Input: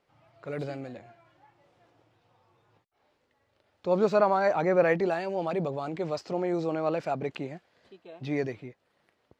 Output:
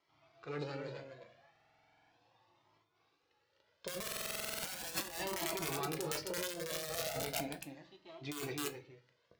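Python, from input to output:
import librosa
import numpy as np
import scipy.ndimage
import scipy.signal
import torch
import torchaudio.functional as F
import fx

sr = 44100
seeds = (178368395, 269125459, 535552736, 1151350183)

y = np.where(x < 0.0, 10.0 ** (-7.0 / 20.0) * x, x)
y = scipy.signal.sosfilt(scipy.signal.butter(4, 5900.0, 'lowpass', fs=sr, output='sos'), y)
y = fx.low_shelf(y, sr, hz=140.0, db=-9.0)
y = fx.hum_notches(y, sr, base_hz=60, count=4)
y = (np.mod(10.0 ** (23.0 / 20.0) * y + 1.0, 2.0) - 1.0) / 10.0 ** (23.0 / 20.0)
y = scipy.signal.sosfilt(scipy.signal.butter(2, 46.0, 'highpass', fs=sr, output='sos'), y)
y = y + 10.0 ** (-7.5 / 20.0) * np.pad(y, (int(261 * sr / 1000.0), 0))[:len(y)]
y = fx.room_shoebox(y, sr, seeds[0], volume_m3=130.0, walls='furnished', distance_m=0.67)
y = fx.over_compress(y, sr, threshold_db=-33.0, ratio=-0.5)
y = fx.high_shelf(y, sr, hz=3900.0, db=11.5)
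y = fx.buffer_glitch(y, sr, at_s=(1.51, 4.03), block=2048, repeats=12)
y = fx.comb_cascade(y, sr, direction='rising', hz=0.37)
y = y * 10.0 ** (-3.0 / 20.0)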